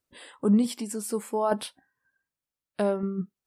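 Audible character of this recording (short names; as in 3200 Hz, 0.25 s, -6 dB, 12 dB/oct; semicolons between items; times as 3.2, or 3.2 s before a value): tremolo saw down 0.66 Hz, depth 45%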